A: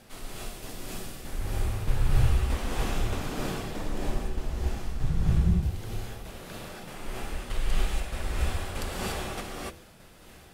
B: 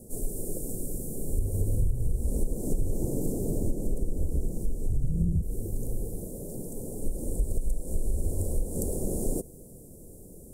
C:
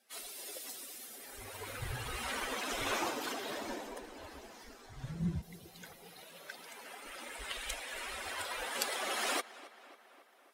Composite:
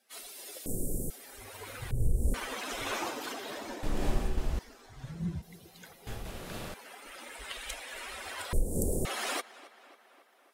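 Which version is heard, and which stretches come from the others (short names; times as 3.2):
C
0.66–1.1 from B
1.91–2.34 from B
3.83–4.59 from A
6.07–6.74 from A
8.53–9.05 from B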